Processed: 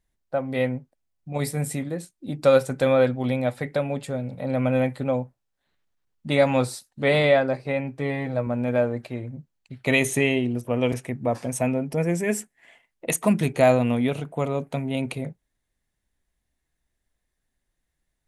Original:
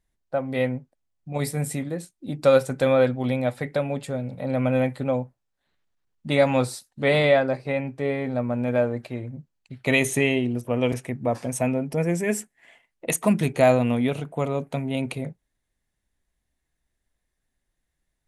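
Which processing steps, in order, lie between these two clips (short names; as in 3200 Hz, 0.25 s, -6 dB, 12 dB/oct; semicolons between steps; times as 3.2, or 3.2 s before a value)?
7.99–8.47 comb 6.2 ms, depth 53%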